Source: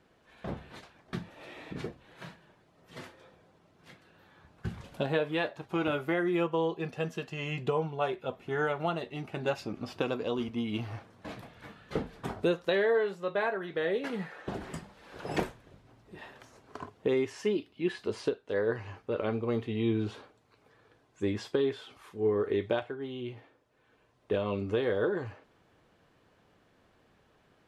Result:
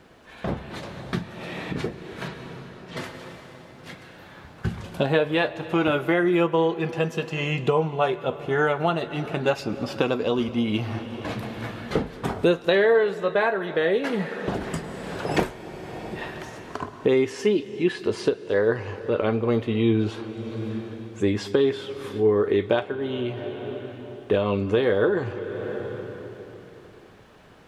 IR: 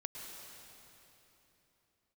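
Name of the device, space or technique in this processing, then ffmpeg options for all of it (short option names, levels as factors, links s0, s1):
ducked reverb: -filter_complex "[0:a]asettb=1/sr,asplit=3[s0][s1][s2];[s0]atrim=end=2.284[s3];[s1]atrim=start=2.28:end=2.97,asetpts=PTS-STARTPTS,afade=t=in:d=0.004:c=qsin,afade=t=out:st=0.686:d=0.004:c=qsin,lowpass=5700[s4];[s2]atrim=start=2.966[s5];[s3][s4]acrossfade=d=0.004:c1=hsin:c2=qsin[s6];[s6][s5]acrossfade=d=0.004:c1=qsin:c2=hsin,asplit=3[s7][s8][s9];[1:a]atrim=start_sample=2205[s10];[s8][s10]afir=irnorm=-1:irlink=0[s11];[s9]apad=whole_len=1220616[s12];[s11][s12]sidechaincompress=threshold=0.00891:ratio=16:attack=12:release=549,volume=1.58[s13];[s7][s13]amix=inputs=2:normalize=0,volume=2.24"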